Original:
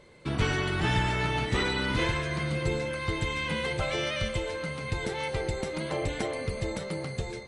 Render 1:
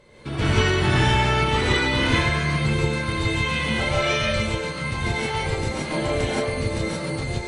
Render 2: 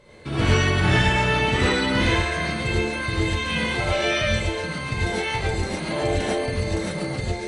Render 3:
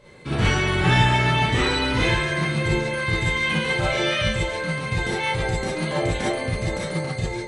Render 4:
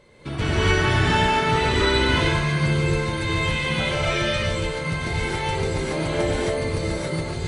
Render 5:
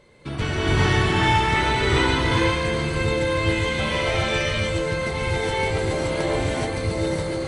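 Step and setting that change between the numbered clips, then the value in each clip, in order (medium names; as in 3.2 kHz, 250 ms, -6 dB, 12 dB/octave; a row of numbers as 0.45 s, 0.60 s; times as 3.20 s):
gated-style reverb, gate: 200 ms, 130 ms, 80 ms, 300 ms, 450 ms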